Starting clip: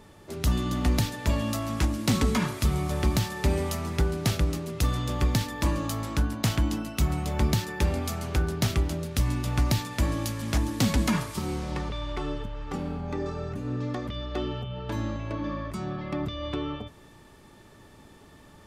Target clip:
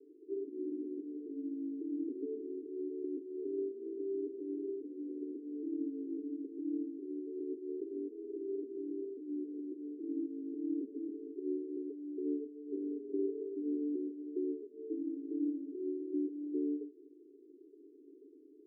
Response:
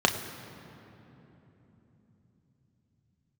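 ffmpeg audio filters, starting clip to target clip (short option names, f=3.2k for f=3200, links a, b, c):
-af "alimiter=limit=-23.5dB:level=0:latency=1:release=113,asuperpass=centerf=350:order=12:qfactor=2.1,volume=1.5dB"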